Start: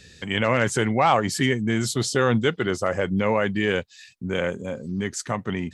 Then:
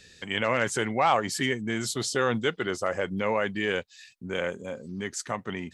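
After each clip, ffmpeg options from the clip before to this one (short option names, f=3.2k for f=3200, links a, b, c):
-af "equalizer=f=95:w=0.41:g=-7.5,volume=-3dB"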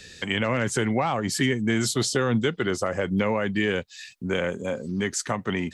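-filter_complex "[0:a]acrossover=split=290[a][b];[b]acompressor=threshold=-32dB:ratio=6[c];[a][c]amix=inputs=2:normalize=0,volume=8dB"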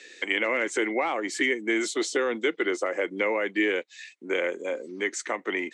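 -af "highpass=f=320:w=0.5412,highpass=f=320:w=1.3066,equalizer=f=320:t=q:w=4:g=10,equalizer=f=500:t=q:w=4:g=3,equalizer=f=2.1k:t=q:w=4:g=10,equalizer=f=4.9k:t=q:w=4:g=-6,lowpass=f=8.3k:w=0.5412,lowpass=f=8.3k:w=1.3066,volume=-3.5dB"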